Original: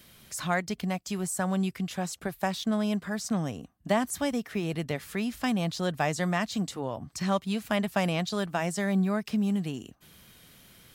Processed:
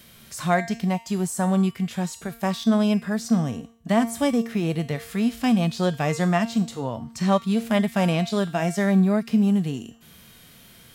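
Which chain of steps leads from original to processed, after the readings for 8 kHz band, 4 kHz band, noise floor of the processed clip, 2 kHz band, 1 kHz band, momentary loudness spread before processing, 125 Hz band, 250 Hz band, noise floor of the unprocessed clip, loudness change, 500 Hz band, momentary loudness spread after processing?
+1.5 dB, +3.0 dB, -50 dBFS, +2.5 dB, +5.0 dB, 6 LU, +7.5 dB, +7.5 dB, -57 dBFS, +6.5 dB, +6.0 dB, 9 LU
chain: resonator 230 Hz, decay 0.52 s, harmonics all, mix 60%; harmonic-percussive split harmonic +9 dB; gain +6 dB

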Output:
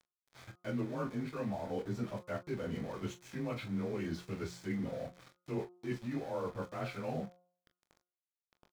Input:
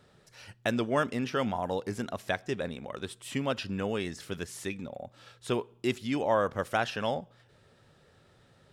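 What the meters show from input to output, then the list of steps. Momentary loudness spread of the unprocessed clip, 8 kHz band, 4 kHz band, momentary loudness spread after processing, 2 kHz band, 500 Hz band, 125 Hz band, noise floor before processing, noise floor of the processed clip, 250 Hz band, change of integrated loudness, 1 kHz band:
12 LU, -11.5 dB, -13.5 dB, 5 LU, -12.5 dB, -8.5 dB, -2.5 dB, -62 dBFS, under -85 dBFS, -4.5 dB, -7.5 dB, -12.0 dB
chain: inharmonic rescaling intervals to 92%; reverse; compressor 6:1, threshold -42 dBFS, peak gain reduction 18 dB; reverse; low shelf 420 Hz +6.5 dB; sample gate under -49.5 dBFS; high shelf 6500 Hz -10 dB; notch 2800 Hz, Q 7.8; de-hum 178.4 Hz, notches 8; on a send: early reflections 25 ms -10 dB, 40 ms -13 dB; on the sum: gain +2.5 dB

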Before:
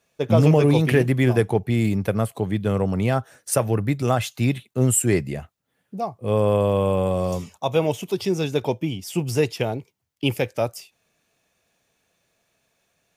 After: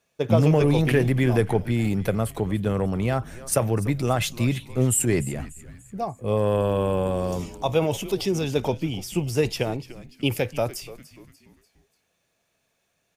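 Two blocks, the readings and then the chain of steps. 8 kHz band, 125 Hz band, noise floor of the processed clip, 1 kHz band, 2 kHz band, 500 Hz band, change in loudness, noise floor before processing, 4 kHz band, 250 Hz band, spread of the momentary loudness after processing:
-1.0 dB, -2.0 dB, -73 dBFS, -2.0 dB, -1.5 dB, -2.0 dB, -2.0 dB, -73 dBFS, 0.0 dB, -2.0 dB, 9 LU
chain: transient shaper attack +3 dB, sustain +7 dB; on a send: frequency-shifting echo 0.293 s, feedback 45%, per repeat -130 Hz, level -16.5 dB; on the sum: gain -3.5 dB

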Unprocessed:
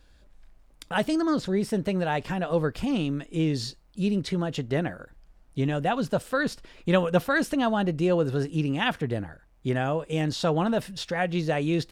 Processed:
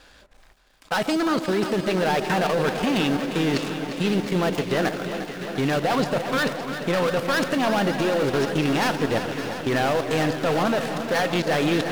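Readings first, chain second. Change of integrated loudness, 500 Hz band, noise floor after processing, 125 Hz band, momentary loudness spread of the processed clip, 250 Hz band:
+3.5 dB, +4.5 dB, -52 dBFS, 0.0 dB, 4 LU, +2.5 dB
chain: switching dead time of 0.16 ms; resonator 260 Hz, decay 0.46 s, harmonics all, mix 40%; overdrive pedal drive 18 dB, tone 5900 Hz, clips at -13 dBFS; level quantiser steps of 15 dB; on a send: split-band echo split 1200 Hz, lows 0.144 s, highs 0.566 s, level -11 dB; on the sum: lo-fi delay 0.35 s, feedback 80%, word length 10-bit, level -10.5 dB; gain +8 dB

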